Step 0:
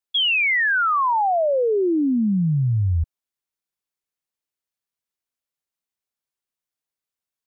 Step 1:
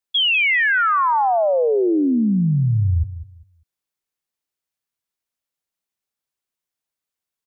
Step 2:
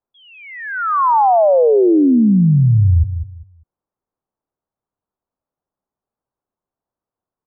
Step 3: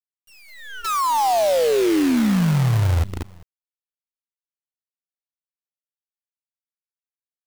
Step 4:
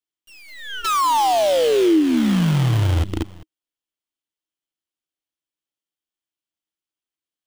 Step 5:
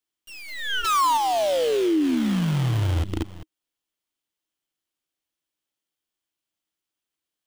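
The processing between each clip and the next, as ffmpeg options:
-af "aecho=1:1:198|396|594:0.211|0.0486|0.0112,volume=1.26"
-filter_complex "[0:a]asplit=2[s0][s1];[s1]alimiter=limit=0.0794:level=0:latency=1:release=127,volume=1.19[s2];[s0][s2]amix=inputs=2:normalize=0,lowpass=f=1100:w=0.5412,lowpass=f=1100:w=1.3066,volume=1.41"
-af "bandreject=f=1400:w=22,acrusher=bits=4:dc=4:mix=0:aa=0.000001,volume=0.473"
-af "equalizer=f=315:t=o:w=0.33:g=12,equalizer=f=3150:t=o:w=0.33:g=8,equalizer=f=16000:t=o:w=0.33:g=-11,acompressor=threshold=0.141:ratio=6,volume=1.41"
-af "alimiter=limit=0.1:level=0:latency=1:release=366,volume=1.68"

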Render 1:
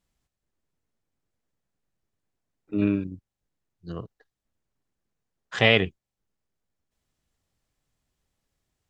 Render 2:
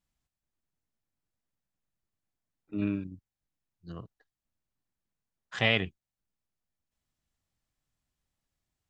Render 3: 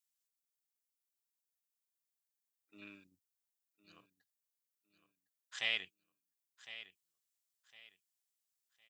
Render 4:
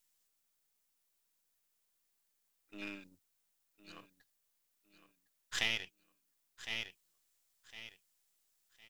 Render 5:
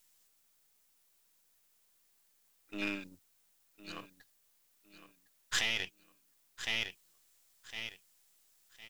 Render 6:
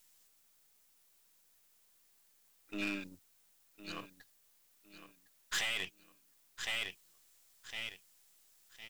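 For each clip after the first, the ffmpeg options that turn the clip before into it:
-af "equalizer=f=440:w=2.1:g=-5.5,volume=0.501"
-af "aderivative,aecho=1:1:1058|2116|3174:0.2|0.0579|0.0168,volume=1.12"
-af "aeval=exprs='if(lt(val(0),0),0.447*val(0),val(0))':c=same,acompressor=threshold=0.00794:ratio=6,volume=3.98"
-af "alimiter=level_in=1.41:limit=0.0631:level=0:latency=1:release=11,volume=0.708,volume=2.66"
-af "asoftclip=type=tanh:threshold=0.0282,volume=1.26"

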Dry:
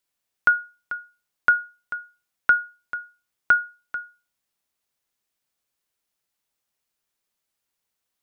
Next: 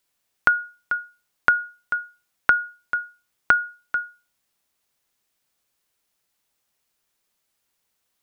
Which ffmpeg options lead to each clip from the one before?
-af "acompressor=threshold=0.1:ratio=6,volume=2"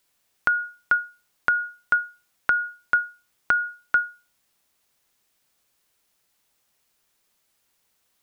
-af "alimiter=limit=0.282:level=0:latency=1:release=166,volume=1.68"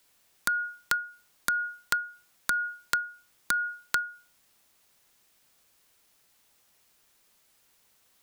-filter_complex "[0:a]acrossover=split=210|340|890[s0][s1][s2][s3];[s2]asoftclip=type=tanh:threshold=0.0211[s4];[s0][s1][s4][s3]amix=inputs=4:normalize=0,acompressor=threshold=0.0355:ratio=6,aeval=exprs='(mod(8.91*val(0)+1,2)-1)/8.91':c=same,volume=1.68"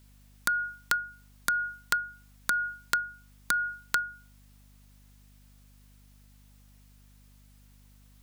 -af "aeval=exprs='val(0)+0.00158*(sin(2*PI*50*n/s)+sin(2*PI*2*50*n/s)/2+sin(2*PI*3*50*n/s)/3+sin(2*PI*4*50*n/s)/4+sin(2*PI*5*50*n/s)/5)':c=same"

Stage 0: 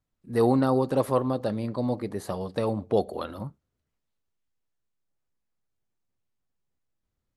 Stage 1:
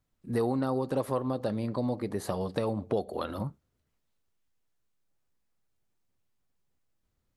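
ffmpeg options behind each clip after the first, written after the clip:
-af "acompressor=threshold=0.0251:ratio=3,volume=1.5"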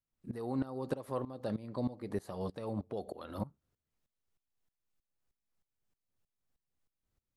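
-af "aeval=exprs='val(0)*pow(10,-18*if(lt(mod(-3.2*n/s,1),2*abs(-3.2)/1000),1-mod(-3.2*n/s,1)/(2*abs(-3.2)/1000),(mod(-3.2*n/s,1)-2*abs(-3.2)/1000)/(1-2*abs(-3.2)/1000))/20)':c=same,volume=0.891"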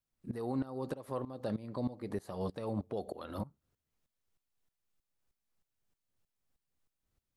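-af "alimiter=level_in=1.33:limit=0.0631:level=0:latency=1:release=256,volume=0.75,volume=1.19"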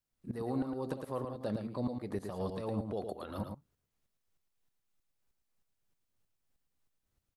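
-af "aecho=1:1:110:0.501"

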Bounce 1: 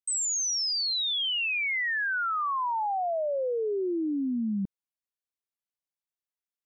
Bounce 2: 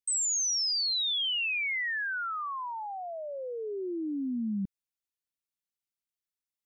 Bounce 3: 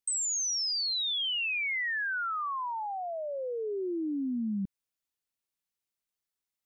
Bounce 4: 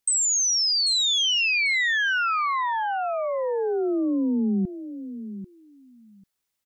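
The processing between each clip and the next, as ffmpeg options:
-af "equalizer=f=680:w=0.62:g=-9.5"
-af "acompressor=threshold=0.0251:ratio=6,volume=1.33"
-af "aecho=1:1:792|1584:0.251|0.0377,volume=2.66"

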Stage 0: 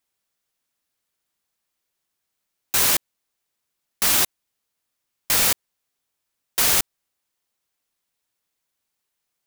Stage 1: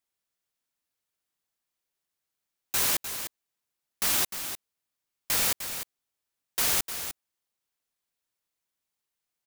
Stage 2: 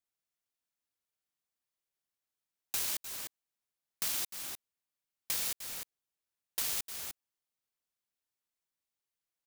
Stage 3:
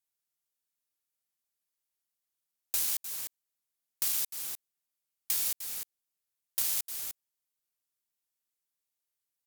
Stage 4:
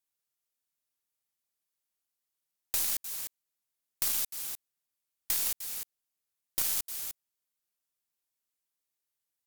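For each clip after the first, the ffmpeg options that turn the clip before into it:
-af "aecho=1:1:303:0.335,volume=0.447"
-filter_complex "[0:a]aeval=exprs='0.237*(cos(1*acos(clip(val(0)/0.237,-1,1)))-cos(1*PI/2))+0.0531*(cos(3*acos(clip(val(0)/0.237,-1,1)))-cos(3*PI/2))':c=same,acrossover=split=2700|5400[s0][s1][s2];[s0]acompressor=threshold=0.00282:ratio=4[s3];[s1]acompressor=threshold=0.00562:ratio=4[s4];[s2]acompressor=threshold=0.0178:ratio=4[s5];[s3][s4][s5]amix=inputs=3:normalize=0,volume=1.41"
-af "aemphasis=mode=production:type=cd,volume=0.668"
-af "aeval=exprs='0.282*(cos(1*acos(clip(val(0)/0.282,-1,1)))-cos(1*PI/2))+0.112*(cos(2*acos(clip(val(0)/0.282,-1,1)))-cos(2*PI/2))':c=same"

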